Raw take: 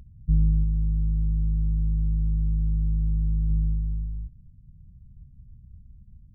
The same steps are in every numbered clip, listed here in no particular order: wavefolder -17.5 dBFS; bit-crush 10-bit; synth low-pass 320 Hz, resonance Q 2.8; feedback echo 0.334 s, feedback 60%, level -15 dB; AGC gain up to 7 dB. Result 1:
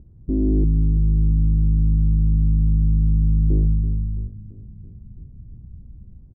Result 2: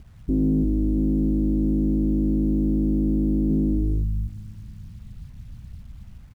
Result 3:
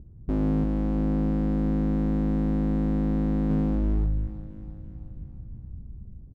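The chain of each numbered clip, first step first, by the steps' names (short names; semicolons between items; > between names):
wavefolder > AGC > feedback echo > bit-crush > synth low-pass; AGC > feedback echo > wavefolder > synth low-pass > bit-crush; AGC > bit-crush > synth low-pass > wavefolder > feedback echo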